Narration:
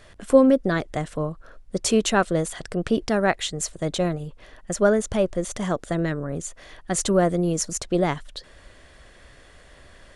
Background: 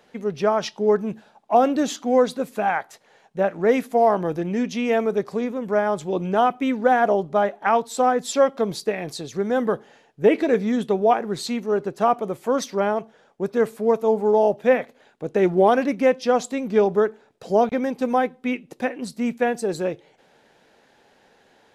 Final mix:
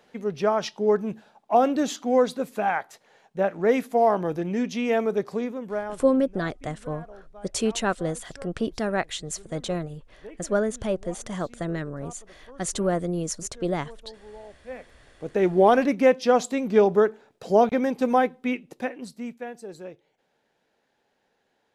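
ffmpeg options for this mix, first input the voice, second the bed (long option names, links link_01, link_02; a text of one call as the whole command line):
ffmpeg -i stem1.wav -i stem2.wav -filter_complex "[0:a]adelay=5700,volume=-5dB[link_01];[1:a]volume=24dB,afade=type=out:start_time=5.33:duration=0.81:silence=0.0630957,afade=type=in:start_time=14.66:duration=1.09:silence=0.0473151,afade=type=out:start_time=18.23:duration=1.19:silence=0.188365[link_02];[link_01][link_02]amix=inputs=2:normalize=0" out.wav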